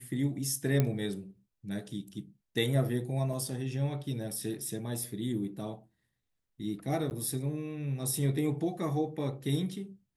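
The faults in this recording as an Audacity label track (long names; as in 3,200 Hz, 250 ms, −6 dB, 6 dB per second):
0.800000	0.800000	click −14 dBFS
3.330000	3.330000	drop-out 3.3 ms
7.100000	7.110000	drop-out 9.5 ms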